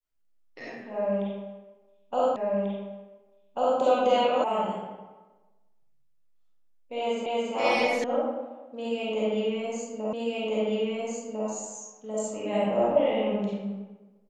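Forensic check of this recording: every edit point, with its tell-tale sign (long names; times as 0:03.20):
0:02.36: the same again, the last 1.44 s
0:04.44: cut off before it has died away
0:07.26: the same again, the last 0.28 s
0:08.04: cut off before it has died away
0:10.13: the same again, the last 1.35 s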